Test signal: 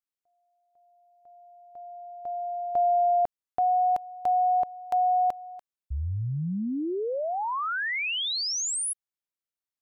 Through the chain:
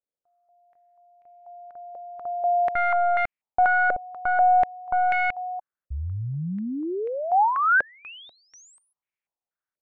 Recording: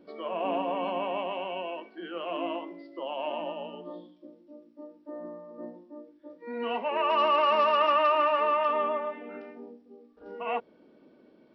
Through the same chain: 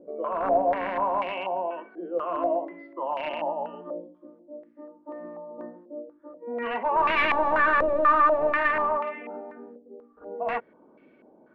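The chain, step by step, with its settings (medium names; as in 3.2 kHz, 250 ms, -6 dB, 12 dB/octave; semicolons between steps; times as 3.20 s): one-sided wavefolder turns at -25.5 dBFS; step-sequenced low-pass 4.1 Hz 550–2300 Hz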